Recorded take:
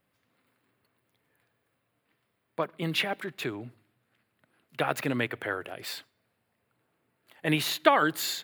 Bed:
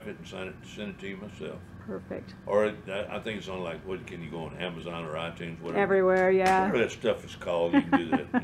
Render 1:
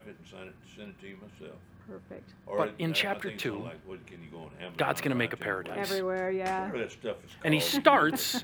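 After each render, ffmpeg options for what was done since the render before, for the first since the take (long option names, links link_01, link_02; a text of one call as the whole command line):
ffmpeg -i in.wav -i bed.wav -filter_complex "[1:a]volume=-8.5dB[link_01];[0:a][link_01]amix=inputs=2:normalize=0" out.wav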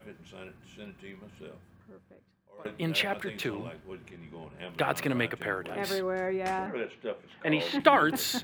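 ffmpeg -i in.wav -filter_complex "[0:a]asettb=1/sr,asplit=3[link_01][link_02][link_03];[link_01]atrim=end=4.104[link_04];[link_02]atrim=start=4.1:end=4.58,asetpts=PTS-STARTPTS,afade=type=in:duration=0.004:curve=qsin,afade=type=out:start_time=0.476:duration=0.004:curve=qsin,lowpass=frequency=4000:poles=1[link_05];[link_03]atrim=start=4.576[link_06];[link_04][link_05]acrossfade=duration=0.004:curve1=hsin:curve2=qsin[link_07];[link_07][link_06]acrossfade=duration=0.004:curve1=qsin:curve2=hsin,asettb=1/sr,asplit=3[link_08][link_09][link_10];[link_08]atrim=end=6.664[link_11];[link_09]atrim=start=6.66:end=7.8,asetpts=PTS-STARTPTS,afade=type=in:duration=0.004:curve=qsin,afade=type=out:start_time=1.136:duration=0.004:curve=qsin,acrossover=split=160 3800:gain=0.141 1 0.0794[link_12][link_13][link_14];[link_12][link_13][link_14]amix=inputs=3:normalize=0[link_15];[link_10]atrim=start=7.796[link_16];[link_11][link_15]acrossfade=duration=0.004:curve1=hsin:curve2=qsin[link_17];[link_17][link_16]acrossfade=duration=0.004:curve1=qsin:curve2=hsin,asplit=2[link_18][link_19];[link_18]atrim=end=2.65,asetpts=PTS-STARTPTS,afade=type=out:start_time=1.48:duration=1.17:curve=qua:silence=0.0891251[link_20];[link_19]atrim=start=2.65,asetpts=PTS-STARTPTS,afade=type=in:duration=0.004:curve=hsin:silence=0.0891251[link_21];[link_20][link_21]concat=n=2:v=0:a=1" out.wav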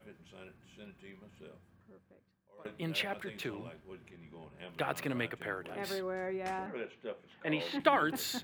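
ffmpeg -i in.wav -af "volume=-6.5dB" out.wav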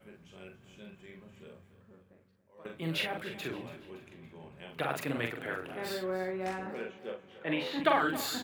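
ffmpeg -i in.wav -filter_complex "[0:a]asplit=2[link_01][link_02];[link_02]adelay=43,volume=-4dB[link_03];[link_01][link_03]amix=inputs=2:normalize=0,aecho=1:1:283|566|849|1132:0.168|0.0772|0.0355|0.0163" out.wav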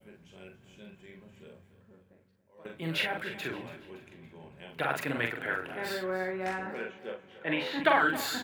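ffmpeg -i in.wav -af "bandreject=frequency=1200:width=8.3,adynamicequalizer=threshold=0.00355:dfrequency=1500:dqfactor=0.95:tfrequency=1500:tqfactor=0.95:attack=5:release=100:ratio=0.375:range=3.5:mode=boostabove:tftype=bell" out.wav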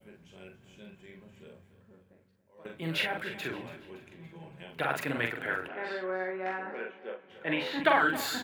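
ffmpeg -i in.wav -filter_complex "[0:a]asettb=1/sr,asplit=3[link_01][link_02][link_03];[link_01]atrim=end=4.194[link_04];[link_02]atrim=start=4.19:end=4.63,asetpts=PTS-STARTPTS,afade=type=in:duration=0.004:curve=qsin,afade=type=out:start_time=0.436:duration=0.004:curve=qsin,aecho=1:1:6.1:0.8,atrim=end_sample=19404[link_05];[link_03]atrim=start=4.626[link_06];[link_04][link_05]acrossfade=duration=0.004:curve1=hsin:curve2=qsin[link_07];[link_07][link_06]acrossfade=duration=0.004:curve1=qsin:curve2=hsin,asettb=1/sr,asplit=3[link_08][link_09][link_10];[link_08]atrim=end=5.684[link_11];[link_09]atrim=start=5.68:end=7.3,asetpts=PTS-STARTPTS,afade=type=in:duration=0.004:curve=qsin,afade=type=out:start_time=1.616:duration=0.004:curve=qsin,highpass=280,lowpass=2700[link_12];[link_10]atrim=start=7.296[link_13];[link_11][link_12]acrossfade=duration=0.004:curve1=hsin:curve2=qsin[link_14];[link_14][link_13]acrossfade=duration=0.004:curve1=qsin:curve2=hsin" out.wav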